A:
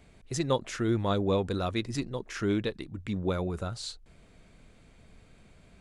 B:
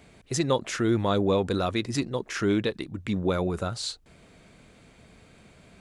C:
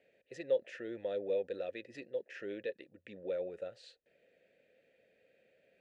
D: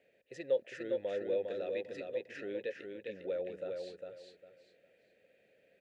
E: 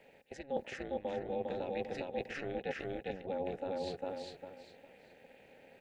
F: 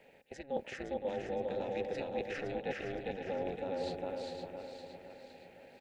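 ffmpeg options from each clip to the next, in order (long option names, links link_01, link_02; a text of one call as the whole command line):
ffmpeg -i in.wav -filter_complex "[0:a]highpass=frequency=120:poles=1,asplit=2[link_01][link_02];[link_02]alimiter=limit=-22.5dB:level=0:latency=1:release=33,volume=2dB[link_03];[link_01][link_03]amix=inputs=2:normalize=0,volume=-1dB" out.wav
ffmpeg -i in.wav -filter_complex "[0:a]asplit=3[link_01][link_02][link_03];[link_01]bandpass=frequency=530:width_type=q:width=8,volume=0dB[link_04];[link_02]bandpass=frequency=1840:width_type=q:width=8,volume=-6dB[link_05];[link_03]bandpass=frequency=2480:width_type=q:width=8,volume=-9dB[link_06];[link_04][link_05][link_06]amix=inputs=3:normalize=0,volume=-3dB" out.wav
ffmpeg -i in.wav -af "aecho=1:1:404|808|1212|1616:0.596|0.155|0.0403|0.0105" out.wav
ffmpeg -i in.wav -af "areverse,acompressor=threshold=-45dB:ratio=6,areverse,tremolo=f=280:d=0.857,volume=13dB" out.wav
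ffmpeg -i in.wav -af "aecho=1:1:514|1028|1542|2056|2570:0.447|0.205|0.0945|0.0435|0.02" out.wav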